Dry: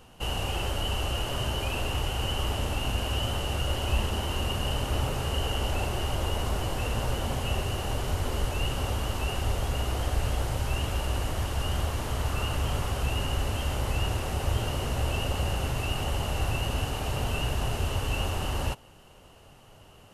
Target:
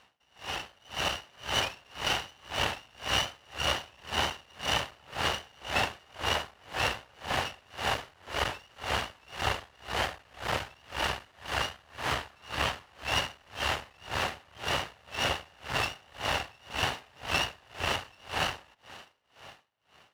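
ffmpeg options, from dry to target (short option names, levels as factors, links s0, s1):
-filter_complex "[0:a]acrossover=split=600 4400:gain=0.2 1 0.158[s0][s1][s2];[s0][s1][s2]amix=inputs=3:normalize=0,dynaudnorm=f=150:g=11:m=5.96,equalizer=f=1800:t=o:w=0.29:g=6.5,asplit=2[s3][s4];[s4]acompressor=threshold=0.0316:ratio=6,volume=1.26[s5];[s3][s5]amix=inputs=2:normalize=0,aeval=exprs='max(val(0),0)':c=same,highpass=69,aeval=exprs='val(0)*pow(10,-33*(0.5-0.5*cos(2*PI*1.9*n/s))/20)':c=same,volume=0.631"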